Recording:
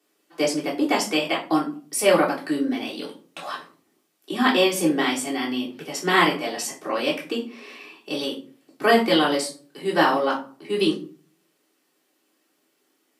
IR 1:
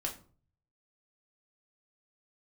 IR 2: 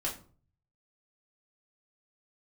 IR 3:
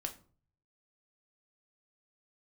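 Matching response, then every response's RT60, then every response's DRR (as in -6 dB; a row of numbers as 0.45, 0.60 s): 2; 0.45, 0.45, 0.45 s; -1.5, -5.5, 3.0 dB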